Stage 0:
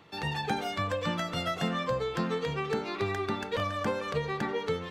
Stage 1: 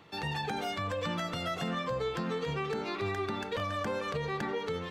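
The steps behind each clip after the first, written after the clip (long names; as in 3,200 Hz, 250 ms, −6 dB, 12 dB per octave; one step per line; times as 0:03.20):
brickwall limiter −25 dBFS, peak gain reduction 7.5 dB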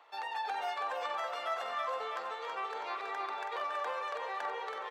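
high-pass filter 750 Hz 24 dB per octave
tilt shelving filter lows +9.5 dB, about 1,200 Hz
repeating echo 326 ms, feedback 52%, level −5.5 dB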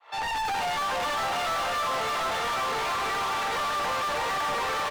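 fade in at the beginning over 0.57 s
single-tap delay 739 ms −3 dB
mid-hump overdrive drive 36 dB, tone 4,900 Hz, clips at −22.5 dBFS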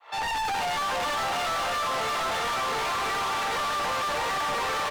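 soft clipping −28 dBFS, distortion −21 dB
level +3 dB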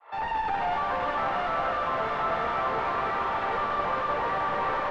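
low-pass filter 1,600 Hz 12 dB per octave
four-comb reverb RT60 3.4 s, combs from 31 ms, DRR 2.5 dB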